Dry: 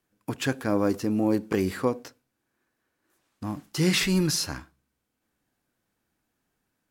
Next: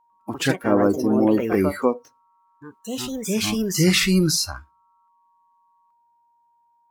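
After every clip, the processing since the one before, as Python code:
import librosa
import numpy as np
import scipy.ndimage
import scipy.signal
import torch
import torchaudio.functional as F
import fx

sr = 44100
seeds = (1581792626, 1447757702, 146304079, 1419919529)

y = x + 10.0 ** (-47.0 / 20.0) * np.sin(2.0 * np.pi * 940.0 * np.arange(len(x)) / sr)
y = fx.noise_reduce_blind(y, sr, reduce_db=19)
y = fx.echo_pitch(y, sr, ms=99, semitones=3, count=2, db_per_echo=-6.0)
y = y * librosa.db_to_amplitude(5.5)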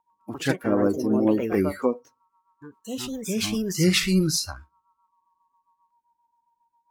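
y = fx.rotary(x, sr, hz=7.5)
y = y * librosa.db_to_amplitude(-1.5)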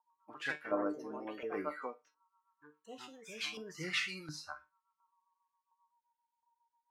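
y = fx.comb_fb(x, sr, f0_hz=150.0, decay_s=0.23, harmonics='all', damping=0.0, mix_pct=80)
y = fx.filter_lfo_bandpass(y, sr, shape='saw_up', hz=1.4, low_hz=920.0, high_hz=2500.0, q=1.3)
y = y * librosa.db_to_amplitude(2.5)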